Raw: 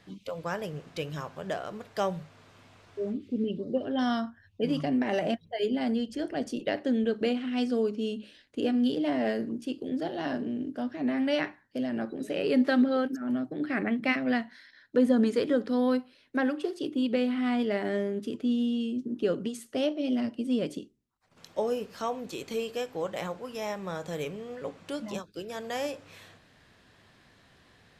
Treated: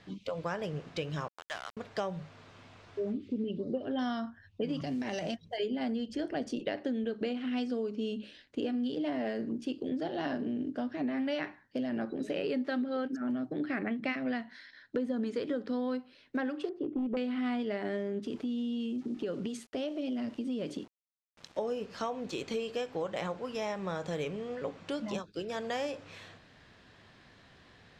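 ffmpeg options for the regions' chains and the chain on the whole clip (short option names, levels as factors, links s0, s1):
-filter_complex "[0:a]asettb=1/sr,asplit=3[s0][s1][s2];[s0]atrim=end=1.284[s3];[s1]atrim=start=1.28:end=1.77,asetpts=PTS-STARTPTS,afade=t=in:d=0.004:c=qsin,afade=t=out:st=0.486:d=0.004:c=qsin,highpass=f=910:w=0.5412,highpass=f=910:w=1.3066,aeval=exprs='val(0)*gte(abs(val(0)),0.00944)':c=same[s4];[s2]atrim=start=1.766[s5];[s3][s4]acrossfade=d=0.004:c1=hsin:c2=qsin[s6];[s6][s5]acrossfade=d=0.004:c1=qsin:c2=hsin,asettb=1/sr,asplit=3[s7][s8][s9];[s7]atrim=end=4.814[s10];[s8]atrim=start=4.81:end=5.58,asetpts=PTS-STARTPTS,afade=t=in:d=0.004:c=qsin,afade=t=out:st=0.766:d=0.004:c=qsin,equalizer=f=5800:w=2:g=8,acrossover=split=160|3000[s11][s12][s13];[s12]acompressor=threshold=0.0224:ratio=8:attack=3.2:release=140:knee=2.83:detection=peak[s14];[s11][s14][s13]amix=inputs=3:normalize=0,acrusher=bits=7:mode=log:mix=0:aa=0.000001[s15];[s9]atrim=start=5.576[s16];[s10][s15]acrossfade=d=0.004:c1=hsin:c2=qsin[s17];[s17][s16]acrossfade=d=0.004:c1=qsin:c2=hsin,asettb=1/sr,asplit=3[s18][s19][s20];[s18]atrim=end=16.694[s21];[s19]atrim=start=16.69:end=17.17,asetpts=PTS-STARTPTS,afade=t=in:d=0.004:c=qsin,afade=t=out:st=0.476:d=0.004:c=qsin,volume=16.8,asoftclip=hard,volume=0.0596,lowpass=1000[s22];[s20]atrim=start=17.166[s23];[s21][s22]acrossfade=d=0.004:c1=hsin:c2=qsin[s24];[s24][s23]acrossfade=d=0.004:c1=qsin:c2=hsin,asettb=1/sr,asplit=3[s25][s26][s27];[s25]atrim=end=18.264[s28];[s26]atrim=start=18.26:end=21.59,asetpts=PTS-STARTPTS,afade=t=in:d=0.004:c=qsin,afade=t=out:st=3.326:d=0.004:c=qsin,acompressor=threshold=0.0224:ratio=3:attack=3.2:release=140:knee=1:detection=peak,aeval=exprs='val(0)*gte(abs(val(0)),0.00224)':c=same[s29];[s27]atrim=start=21.586[s30];[s28][s29]acrossfade=d=0.004:c1=hsin:c2=qsin[s31];[s31][s30]acrossfade=d=0.004:c1=qsin:c2=hsin,lowpass=6300,acompressor=threshold=0.0251:ratio=6,volume=1.19"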